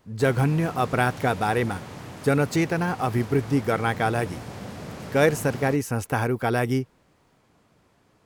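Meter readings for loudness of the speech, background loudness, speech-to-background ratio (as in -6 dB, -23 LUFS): -24.5 LUFS, -38.5 LUFS, 14.0 dB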